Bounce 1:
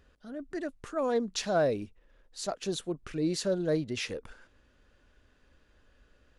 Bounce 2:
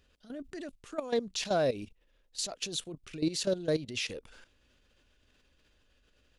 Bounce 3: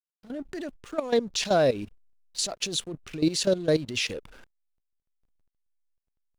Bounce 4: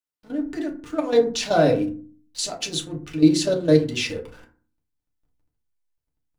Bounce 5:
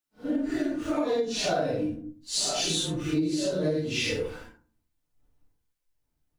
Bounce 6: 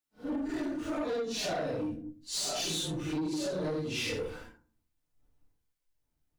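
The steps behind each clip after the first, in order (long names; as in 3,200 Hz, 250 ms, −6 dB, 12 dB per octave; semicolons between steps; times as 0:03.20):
output level in coarse steps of 14 dB; high shelf with overshoot 2,100 Hz +6 dB, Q 1.5; level +2 dB
slack as between gear wheels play −51.5 dBFS; level +6.5 dB
feedback delay network reverb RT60 0.41 s, low-frequency decay 1.5×, high-frequency decay 0.45×, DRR −1 dB
random phases in long frames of 200 ms; downward compressor 16 to 1, threshold −28 dBFS, peak gain reduction 17.5 dB; level +4.5 dB
soft clipping −26 dBFS, distortion −13 dB; level −2.5 dB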